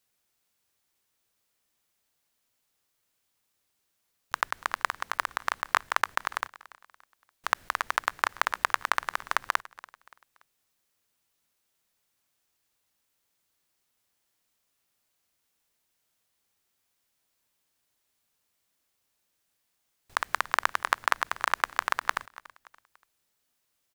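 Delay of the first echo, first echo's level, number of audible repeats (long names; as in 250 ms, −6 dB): 287 ms, −20.0 dB, 2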